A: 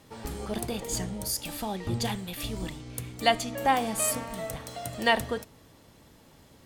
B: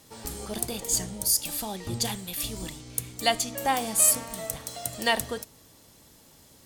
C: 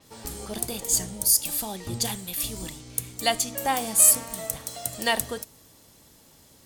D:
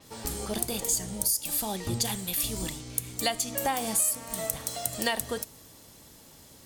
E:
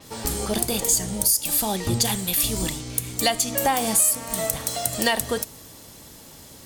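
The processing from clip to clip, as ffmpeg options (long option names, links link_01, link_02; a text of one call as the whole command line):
ffmpeg -i in.wav -af "bass=frequency=250:gain=-1,treble=frequency=4000:gain=11,volume=-2dB" out.wav
ffmpeg -i in.wav -af "adynamicequalizer=threshold=0.0141:dfrequency=6600:dqfactor=0.7:tfrequency=6600:tqfactor=0.7:attack=5:release=100:ratio=0.375:range=2.5:mode=boostabove:tftype=highshelf" out.wav
ffmpeg -i in.wav -af "acompressor=threshold=-27dB:ratio=5,volume=2.5dB" out.wav
ffmpeg -i in.wav -af "asoftclip=type=tanh:threshold=-14.5dB,volume=7.5dB" out.wav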